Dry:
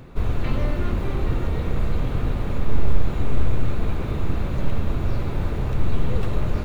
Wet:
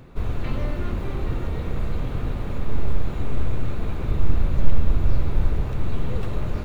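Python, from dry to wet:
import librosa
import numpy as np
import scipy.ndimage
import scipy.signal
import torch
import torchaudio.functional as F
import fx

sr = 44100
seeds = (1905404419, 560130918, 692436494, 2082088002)

y = fx.low_shelf(x, sr, hz=65.0, db=11.0, at=(4.03, 5.62))
y = y * 10.0 ** (-3.0 / 20.0)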